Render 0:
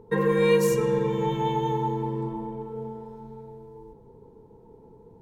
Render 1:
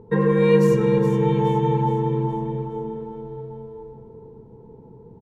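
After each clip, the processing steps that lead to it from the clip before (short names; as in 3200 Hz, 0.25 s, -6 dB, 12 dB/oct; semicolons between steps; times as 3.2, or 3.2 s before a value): LPF 2500 Hz 6 dB/oct; bell 140 Hz +6 dB 1.9 oct; on a send: feedback echo 0.418 s, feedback 46%, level -9 dB; on the sum: gain +2 dB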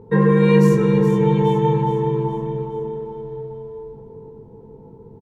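doubler 20 ms -4 dB; gain +1.5 dB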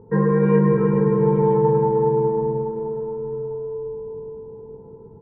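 LPF 1700 Hz 24 dB/oct; multi-head echo 0.104 s, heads all three, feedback 64%, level -14 dB; gain -3 dB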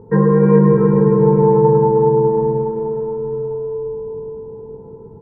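treble ducked by the level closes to 1400 Hz, closed at -15.5 dBFS; gain +5.5 dB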